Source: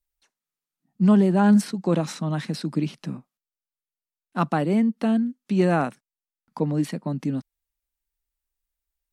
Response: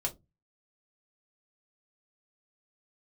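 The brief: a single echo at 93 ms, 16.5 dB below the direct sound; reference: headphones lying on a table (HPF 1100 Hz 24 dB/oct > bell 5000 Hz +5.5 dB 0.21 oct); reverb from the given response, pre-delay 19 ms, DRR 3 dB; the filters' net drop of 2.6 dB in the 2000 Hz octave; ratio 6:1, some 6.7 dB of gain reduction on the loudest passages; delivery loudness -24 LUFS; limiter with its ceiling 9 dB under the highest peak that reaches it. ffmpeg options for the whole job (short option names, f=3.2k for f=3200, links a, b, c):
-filter_complex "[0:a]equalizer=f=2k:t=o:g=-3.5,acompressor=threshold=-20dB:ratio=6,alimiter=limit=-20dB:level=0:latency=1,aecho=1:1:93:0.15,asplit=2[a][b];[1:a]atrim=start_sample=2205,adelay=19[c];[b][c]afir=irnorm=-1:irlink=0,volume=-6dB[d];[a][d]amix=inputs=2:normalize=0,highpass=f=1.1k:w=0.5412,highpass=f=1.1k:w=1.3066,equalizer=f=5k:t=o:w=0.21:g=5.5,volume=17.5dB"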